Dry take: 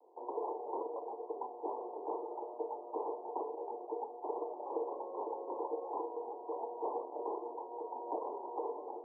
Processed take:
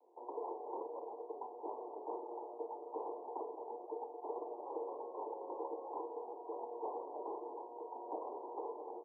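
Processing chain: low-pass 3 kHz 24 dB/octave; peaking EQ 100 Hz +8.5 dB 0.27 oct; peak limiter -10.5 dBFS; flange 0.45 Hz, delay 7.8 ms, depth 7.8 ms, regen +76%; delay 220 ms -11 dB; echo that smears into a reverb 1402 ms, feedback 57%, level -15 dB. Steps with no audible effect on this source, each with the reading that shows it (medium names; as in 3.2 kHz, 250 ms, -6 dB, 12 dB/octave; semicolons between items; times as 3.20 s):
low-pass 3 kHz: input has nothing above 1.1 kHz; peaking EQ 100 Hz: input has nothing below 240 Hz; peak limiter -10.5 dBFS: peak at its input -24.5 dBFS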